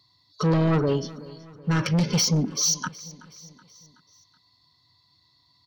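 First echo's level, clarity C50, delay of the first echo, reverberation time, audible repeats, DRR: -20.0 dB, none, 0.375 s, none, 3, none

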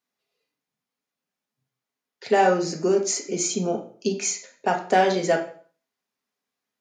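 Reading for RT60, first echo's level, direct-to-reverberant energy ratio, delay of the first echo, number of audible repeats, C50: 0.45 s, none, 1.5 dB, none, none, 9.0 dB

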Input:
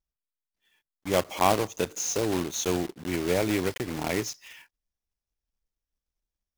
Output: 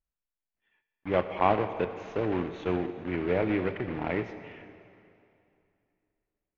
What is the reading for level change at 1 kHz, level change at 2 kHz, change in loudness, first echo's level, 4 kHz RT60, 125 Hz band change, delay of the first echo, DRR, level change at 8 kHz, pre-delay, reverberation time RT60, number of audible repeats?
-1.0 dB, -2.0 dB, -2.0 dB, none, 2.4 s, -1.0 dB, none, 9.5 dB, under -35 dB, 5 ms, 2.6 s, none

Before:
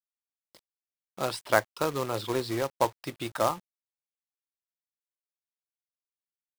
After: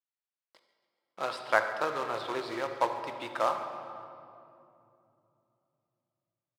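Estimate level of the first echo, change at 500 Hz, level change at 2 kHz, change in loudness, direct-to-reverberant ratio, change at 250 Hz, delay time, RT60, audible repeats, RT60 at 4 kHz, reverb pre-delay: -17.0 dB, -3.0 dB, +1.0 dB, -2.5 dB, 5.5 dB, -7.0 dB, 0.139 s, 2.7 s, 1, 1.6 s, 26 ms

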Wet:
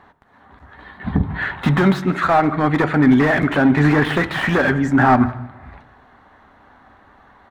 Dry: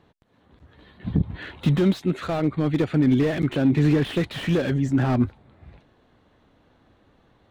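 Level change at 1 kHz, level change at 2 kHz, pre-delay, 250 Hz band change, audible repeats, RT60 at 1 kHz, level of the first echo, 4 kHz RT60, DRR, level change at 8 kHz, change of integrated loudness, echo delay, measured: +16.5 dB, +15.0 dB, 3 ms, +5.0 dB, 1, 1.1 s, -22.5 dB, 1.0 s, 10.5 dB, n/a, +6.0 dB, 0.158 s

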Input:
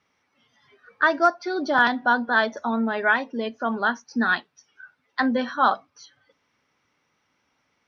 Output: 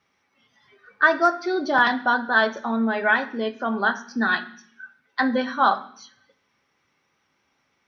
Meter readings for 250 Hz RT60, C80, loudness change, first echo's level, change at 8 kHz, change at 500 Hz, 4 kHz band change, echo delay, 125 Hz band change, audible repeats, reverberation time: 0.80 s, 17.5 dB, +1.0 dB, none, n/a, +1.0 dB, +1.5 dB, none, n/a, none, 0.55 s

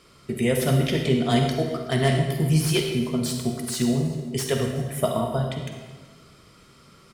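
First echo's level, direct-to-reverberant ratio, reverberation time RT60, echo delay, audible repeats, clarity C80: -21.5 dB, 3.0 dB, 1.4 s, 0.377 s, 1, 5.5 dB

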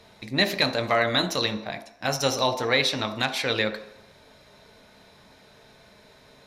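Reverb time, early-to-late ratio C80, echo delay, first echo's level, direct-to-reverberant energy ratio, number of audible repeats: 0.75 s, 13.0 dB, none, none, 7.0 dB, none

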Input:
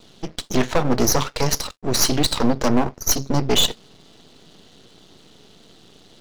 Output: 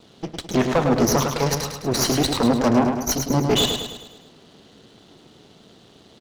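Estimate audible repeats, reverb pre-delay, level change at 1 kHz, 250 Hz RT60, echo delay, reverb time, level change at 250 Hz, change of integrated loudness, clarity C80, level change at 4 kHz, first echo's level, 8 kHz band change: 5, none, +1.5 dB, none, 0.105 s, none, +2.0 dB, 0.0 dB, none, -2.5 dB, -6.0 dB, -3.5 dB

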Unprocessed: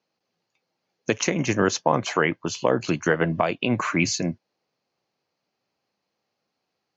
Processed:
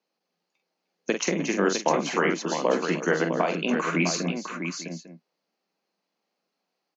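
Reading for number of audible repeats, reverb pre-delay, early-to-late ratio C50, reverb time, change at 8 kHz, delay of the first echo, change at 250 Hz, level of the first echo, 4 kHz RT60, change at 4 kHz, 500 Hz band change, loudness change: 4, none, none, none, n/a, 45 ms, -1.5 dB, -6.5 dB, none, -1.5 dB, -1.0 dB, -2.0 dB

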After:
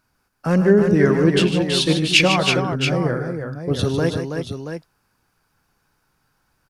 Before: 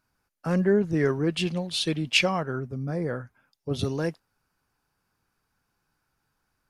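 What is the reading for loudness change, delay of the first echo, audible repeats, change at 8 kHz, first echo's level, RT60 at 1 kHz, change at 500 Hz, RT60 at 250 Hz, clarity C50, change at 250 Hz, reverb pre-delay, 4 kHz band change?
+8.5 dB, 0.107 s, 4, +9.0 dB, -14.5 dB, none, +9.0 dB, none, none, +9.0 dB, none, +9.0 dB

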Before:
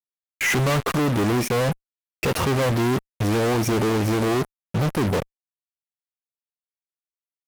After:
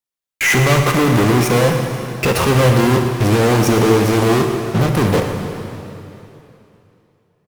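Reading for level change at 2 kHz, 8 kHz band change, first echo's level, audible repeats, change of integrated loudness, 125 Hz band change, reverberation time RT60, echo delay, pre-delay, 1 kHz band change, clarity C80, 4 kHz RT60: +8.0 dB, +7.5 dB, -13.0 dB, 1, +7.5 dB, +8.5 dB, 3.0 s, 0.115 s, 4 ms, +8.0 dB, 4.5 dB, 2.8 s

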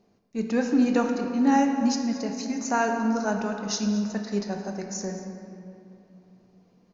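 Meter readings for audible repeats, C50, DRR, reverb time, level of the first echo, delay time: 1, 4.5 dB, 3.0 dB, 2.8 s, -16.5 dB, 0.224 s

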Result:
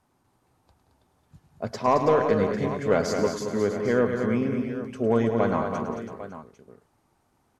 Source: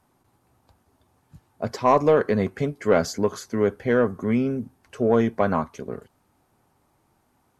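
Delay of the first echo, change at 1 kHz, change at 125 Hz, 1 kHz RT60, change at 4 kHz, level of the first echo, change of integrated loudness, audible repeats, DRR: 0.106 s, -1.5 dB, -1.5 dB, none, -1.0 dB, -11.0 dB, -2.0 dB, 6, none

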